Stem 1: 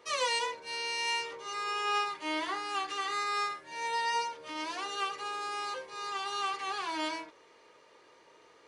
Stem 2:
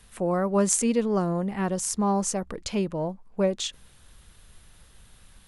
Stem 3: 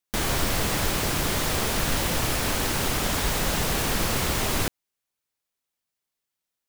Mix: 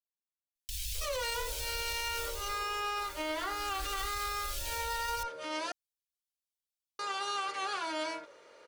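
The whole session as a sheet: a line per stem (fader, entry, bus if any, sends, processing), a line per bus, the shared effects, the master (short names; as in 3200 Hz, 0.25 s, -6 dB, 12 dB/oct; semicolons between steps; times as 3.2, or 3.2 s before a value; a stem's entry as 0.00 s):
-1.0 dB, 0.95 s, muted 5.72–6.99, bus A, no send, high shelf 4800 Hz +5 dB; small resonant body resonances 570/1400 Hz, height 13 dB, ringing for 35 ms
off
2.15 s -7.5 dB -> 2.65 s -18.5 dB -> 3.49 s -18.5 dB -> 4.07 s -8 dB, 0.55 s, bus A, no send, minimum comb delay 1.2 ms; inverse Chebyshev band-stop 240–870 Hz, stop band 70 dB; shaped vibrato square 6.7 Hz, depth 100 cents
bus A: 0.0 dB, limiter -26.5 dBFS, peak gain reduction 11 dB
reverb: off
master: dry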